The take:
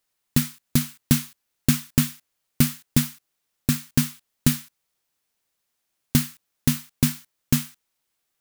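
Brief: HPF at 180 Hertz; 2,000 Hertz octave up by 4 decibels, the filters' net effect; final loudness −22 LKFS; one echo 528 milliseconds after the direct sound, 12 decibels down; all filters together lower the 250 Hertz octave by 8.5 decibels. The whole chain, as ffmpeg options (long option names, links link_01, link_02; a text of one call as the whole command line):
ffmpeg -i in.wav -af "highpass=180,equalizer=frequency=250:width_type=o:gain=-8,equalizer=frequency=2000:width_type=o:gain=5,aecho=1:1:528:0.251,volume=5.5dB" out.wav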